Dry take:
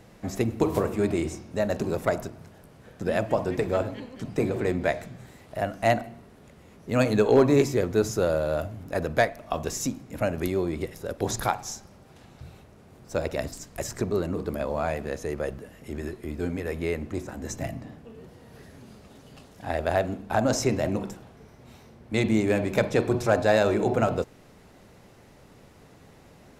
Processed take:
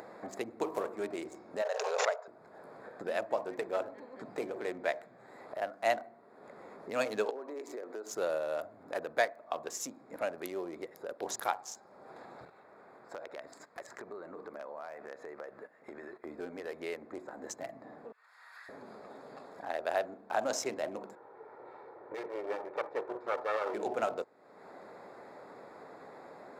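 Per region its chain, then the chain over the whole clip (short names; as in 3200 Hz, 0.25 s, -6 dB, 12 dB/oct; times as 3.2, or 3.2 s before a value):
1.62–2.28 brick-wall FIR band-pass 410–7300 Hz + backwards sustainer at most 21 dB/s
7.3–8.12 HPF 240 Hz 24 dB/oct + compressor 5:1, threshold -30 dBFS
12.45–16.25 gate -43 dBFS, range -16 dB + bell 1800 Hz +6.5 dB 2.1 oct + compressor 2.5:1, threshold -42 dBFS
18.12–18.69 inverse Chebyshev high-pass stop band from 220 Hz, stop band 80 dB + three-band expander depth 70%
21.15–23.74 minimum comb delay 2.2 ms + Bessel low-pass 1700 Hz + low shelf 200 Hz -8 dB
whole clip: Wiener smoothing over 15 samples; HPF 500 Hz 12 dB/oct; upward compressor, threshold -31 dBFS; gain -5.5 dB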